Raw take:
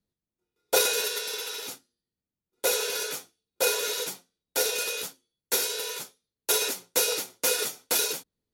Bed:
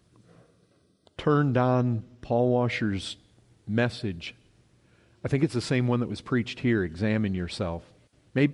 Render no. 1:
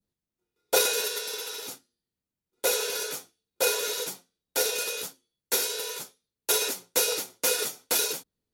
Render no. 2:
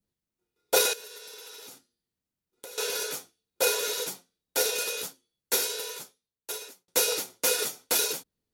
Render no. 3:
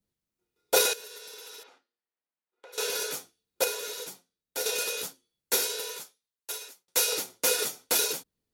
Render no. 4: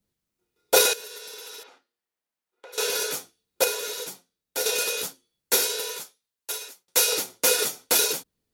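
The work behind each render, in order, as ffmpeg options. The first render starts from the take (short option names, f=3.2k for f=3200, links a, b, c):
-af "adynamicequalizer=threshold=0.00794:dfrequency=2400:dqfactor=0.82:tfrequency=2400:tqfactor=0.82:attack=5:release=100:ratio=0.375:range=2:mode=cutabove:tftype=bell"
-filter_complex "[0:a]asettb=1/sr,asplit=3[a][b][c];[a]atrim=end=0.934[d];[b]atrim=start=0.93:end=2.78,asetpts=PTS-STARTPTS,afade=t=in:d=0.004:c=qsin,afade=t=out:st=1.846:d=0.004:c=qsin,acompressor=threshold=-42dB:ratio=6:attack=3.2:release=140:knee=1:detection=peak[e];[c]atrim=start=2.776[f];[d][e]acrossfade=d=0.004:c1=hsin:c2=qsin[g];[g][f]acrossfade=d=0.004:c1=qsin:c2=hsin,asplit=2[h][i];[h]atrim=end=6.88,asetpts=PTS-STARTPTS,afade=t=out:st=5.56:d=1.32[j];[i]atrim=start=6.88,asetpts=PTS-STARTPTS,afade=t=in:d=0.004:c=hsin[k];[j][k]concat=n=2:v=0:a=1"
-filter_complex "[0:a]asplit=3[a][b][c];[a]afade=t=out:st=1.62:d=0.02[d];[b]highpass=590,lowpass=2.2k,afade=t=in:st=1.62:d=0.02,afade=t=out:st=2.72:d=0.02[e];[c]afade=t=in:st=2.72:d=0.02[f];[d][e][f]amix=inputs=3:normalize=0,asettb=1/sr,asplit=3[g][h][i];[g]atrim=end=6.004[j];[h]atrim=start=6:end=7.13,asetpts=PTS-STARTPTS,afade=t=in:d=0.004:c=qsin,afade=t=out:st=1.126:d=0.004:c=qsin,lowshelf=f=430:g=-11.5[k];[i]atrim=start=7.126[l];[j][k]acrossfade=d=0.004:c1=hsin:c2=qsin[m];[m][l]acrossfade=d=0.004:c1=qsin:c2=hsin,asplit=3[n][o][p];[n]atrim=end=3.642[q];[o]atrim=start=3.638:end=4.662,asetpts=PTS-STARTPTS,volume=-6.5dB[r];[p]atrim=start=4.658[s];[q][r]acrossfade=d=0.004:c1=hsin:c2=hsin[t];[t][s]acrossfade=d=0.004:c1=hsin:c2=hsin"
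-af "volume=4.5dB"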